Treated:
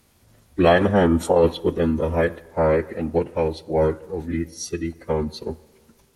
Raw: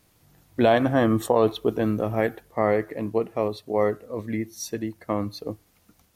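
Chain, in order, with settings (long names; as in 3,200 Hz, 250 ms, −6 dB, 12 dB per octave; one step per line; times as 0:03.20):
phase-vocoder pitch shift with formants kept −5 semitones
on a send: convolution reverb RT60 1.7 s, pre-delay 23 ms, DRR 22 dB
on the sum: level +3.5 dB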